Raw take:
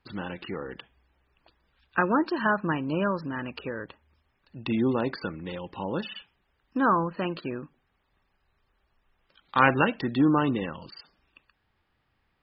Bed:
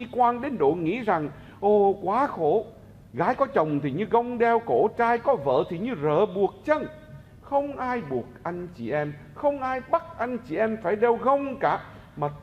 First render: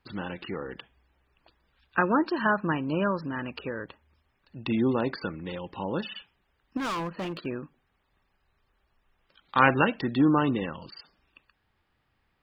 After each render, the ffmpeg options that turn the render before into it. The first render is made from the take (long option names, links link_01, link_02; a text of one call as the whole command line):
ffmpeg -i in.wav -filter_complex "[0:a]asettb=1/sr,asplit=3[link_01][link_02][link_03];[link_01]atrim=end=6.774[link_04];[link_02]atrim=start=6.77:end=7.46,asetpts=PTS-STARTPTS,afade=type=in:duration=0.004:curve=qsin,afade=type=out:start_time=0.686:duration=0.004:curve=qsin,asoftclip=type=hard:threshold=-29dB[link_05];[link_03]atrim=start=7.456[link_06];[link_04][link_05]acrossfade=duration=0.004:curve1=hsin:curve2=qsin[link_07];[link_07][link_06]acrossfade=duration=0.004:curve1=qsin:curve2=hsin" out.wav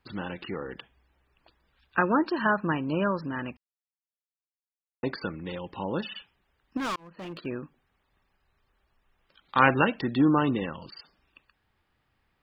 ffmpeg -i in.wav -filter_complex "[0:a]asplit=4[link_01][link_02][link_03][link_04];[link_01]atrim=end=3.57,asetpts=PTS-STARTPTS,afade=type=out:start_time=3.566:duration=0.004:curve=hsin[link_05];[link_02]atrim=start=3.57:end=5.03,asetpts=PTS-STARTPTS,volume=0[link_06];[link_03]atrim=start=5.03:end=6.96,asetpts=PTS-STARTPTS,afade=type=in:duration=0.004:curve=hsin,afade=type=out:start_time=1.926:duration=0.004:curve=hsin[link_07];[link_04]atrim=start=6.96,asetpts=PTS-STARTPTS,afade=type=in:duration=0.58[link_08];[link_05][link_06][link_07][link_08]concat=n=4:v=0:a=1" out.wav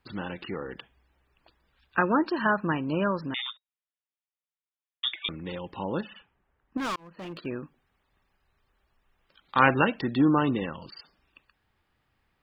ffmpeg -i in.wav -filter_complex "[0:a]asettb=1/sr,asplit=3[link_01][link_02][link_03];[link_01]atrim=end=3.344[link_04];[link_02]atrim=start=3.34:end=5.29,asetpts=PTS-STARTPTS,afade=type=in:duration=0.004:curve=qsin,afade=type=out:start_time=1.946:duration=0.004:curve=qsin,lowpass=frequency=3200:width_type=q:width=0.5098,lowpass=frequency=3200:width_type=q:width=0.6013,lowpass=frequency=3200:width_type=q:width=0.9,lowpass=frequency=3200:width_type=q:width=2.563,afreqshift=-3800[link_05];[link_03]atrim=start=5.286[link_06];[link_04][link_05]acrossfade=duration=0.004:curve1=hsin:curve2=qsin[link_07];[link_07][link_06]acrossfade=duration=0.004:curve1=qsin:curve2=hsin,asettb=1/sr,asplit=3[link_08][link_09][link_10];[link_08]atrim=end=6.014[link_11];[link_09]atrim=start=6.01:end=6.78,asetpts=PTS-STARTPTS,afade=type=in:duration=0.004:curve=qsin,afade=type=out:start_time=0.766:duration=0.004:curve=qsin,lowpass=1700[link_12];[link_10]atrim=start=6.776[link_13];[link_11][link_12]acrossfade=duration=0.004:curve1=hsin:curve2=qsin[link_14];[link_14][link_13]acrossfade=duration=0.004:curve1=qsin:curve2=hsin" out.wav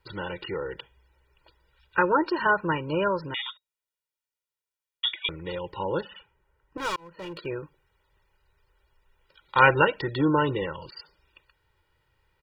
ffmpeg -i in.wav -af "aecho=1:1:2.1:0.89" out.wav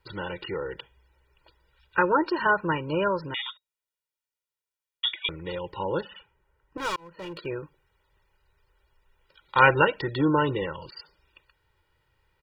ffmpeg -i in.wav -af anull out.wav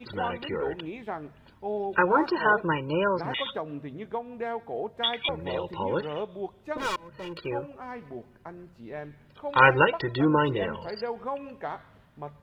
ffmpeg -i in.wav -i bed.wav -filter_complex "[1:a]volume=-11.5dB[link_01];[0:a][link_01]amix=inputs=2:normalize=0" out.wav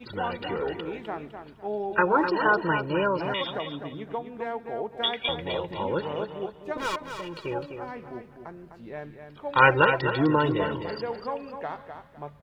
ffmpeg -i in.wav -af "aecho=1:1:254|508|762:0.398|0.111|0.0312" out.wav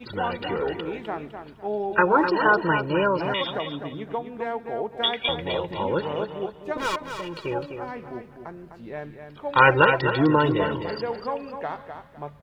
ffmpeg -i in.wav -af "volume=3dB,alimiter=limit=-2dB:level=0:latency=1" out.wav